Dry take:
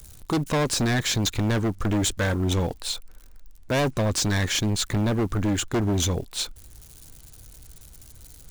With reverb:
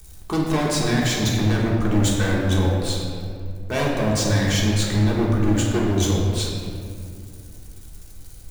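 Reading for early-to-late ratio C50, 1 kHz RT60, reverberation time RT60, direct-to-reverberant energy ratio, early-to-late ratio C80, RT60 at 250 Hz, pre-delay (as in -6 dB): 0.5 dB, 2.1 s, 2.3 s, -4.5 dB, 2.0 dB, 3.0 s, 3 ms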